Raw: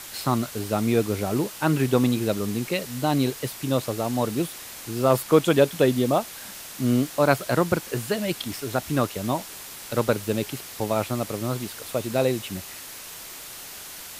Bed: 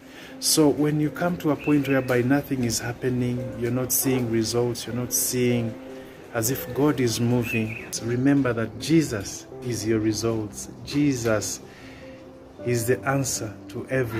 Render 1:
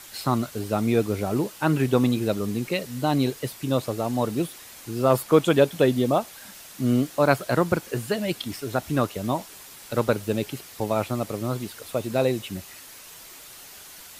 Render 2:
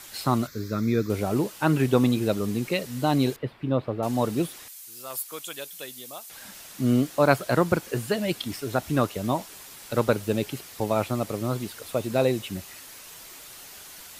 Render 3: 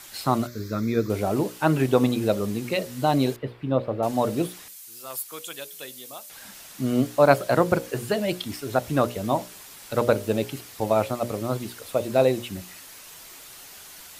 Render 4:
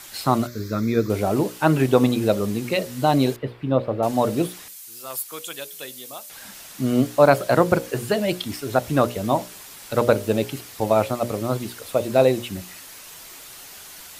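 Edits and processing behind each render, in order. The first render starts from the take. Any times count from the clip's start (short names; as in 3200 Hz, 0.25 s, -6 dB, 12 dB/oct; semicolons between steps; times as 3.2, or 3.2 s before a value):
denoiser 6 dB, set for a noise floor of -40 dBFS
0.47–1.1 fixed phaser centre 2900 Hz, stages 6; 3.36–4.03 air absorption 440 m; 4.68–6.3 pre-emphasis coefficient 0.97
notches 60/120/180/240/300/360/420/480/540/600 Hz; dynamic EQ 640 Hz, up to +5 dB, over -34 dBFS, Q 1.4
gain +3 dB; limiter -2 dBFS, peak gain reduction 3 dB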